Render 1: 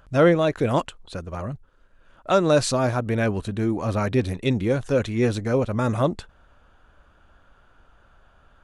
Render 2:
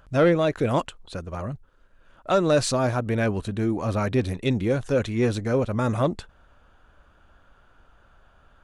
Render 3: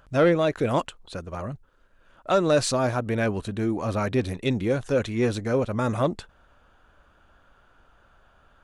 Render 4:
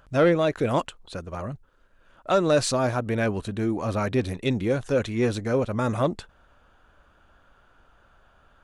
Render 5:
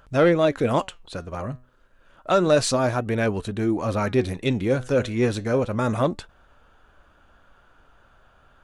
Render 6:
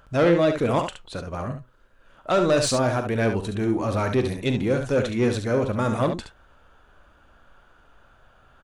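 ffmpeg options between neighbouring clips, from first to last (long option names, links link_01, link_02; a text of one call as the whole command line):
ffmpeg -i in.wav -af "acontrast=77,volume=-7.5dB" out.wav
ffmpeg -i in.wav -af "lowshelf=frequency=160:gain=-4" out.wav
ffmpeg -i in.wav -af anull out.wav
ffmpeg -i in.wav -af "flanger=delay=2.2:depth=5.8:regen=86:speed=0.3:shape=sinusoidal,volume=6.5dB" out.wav
ffmpeg -i in.wav -filter_complex "[0:a]asoftclip=type=tanh:threshold=-12.5dB,asplit=2[link_01][link_02];[link_02]aecho=0:1:41|70:0.188|0.422[link_03];[link_01][link_03]amix=inputs=2:normalize=0" out.wav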